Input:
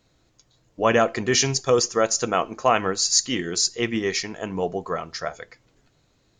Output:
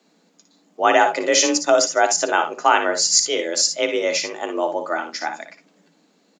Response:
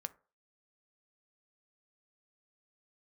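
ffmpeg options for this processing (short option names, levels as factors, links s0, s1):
-af "afreqshift=160,aecho=1:1:58|71:0.355|0.178,volume=1.41"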